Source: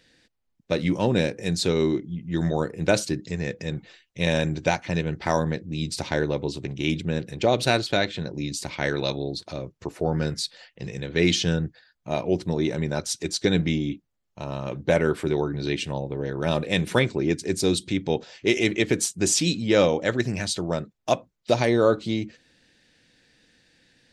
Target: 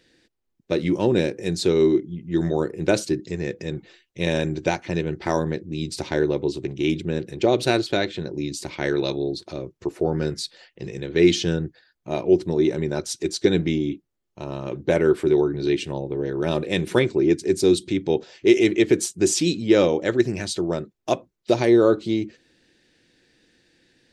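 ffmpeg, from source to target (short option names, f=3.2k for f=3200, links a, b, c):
-af "equalizer=f=360:w=3:g=10.5,volume=-1.5dB"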